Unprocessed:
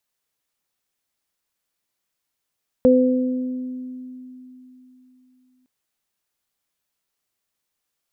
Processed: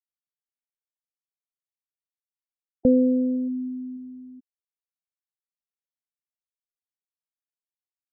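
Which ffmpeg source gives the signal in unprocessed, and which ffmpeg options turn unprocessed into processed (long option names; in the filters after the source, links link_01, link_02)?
-f lavfi -i "aevalsrc='0.224*pow(10,-3*t/3.56)*sin(2*PI*254*t)+0.299*pow(10,-3*t/1.34)*sin(2*PI*508*t)':duration=2.81:sample_rate=44100"
-filter_complex "[0:a]afftfilt=real='re*gte(hypot(re,im),0.112)':imag='im*gte(hypot(re,im),0.112)':win_size=1024:overlap=0.75,equalizer=frequency=560:width_type=o:width=0.77:gain=-3.5,acrossover=split=610[link_01][link_02];[link_02]acompressor=threshold=-40dB:ratio=6[link_03];[link_01][link_03]amix=inputs=2:normalize=0"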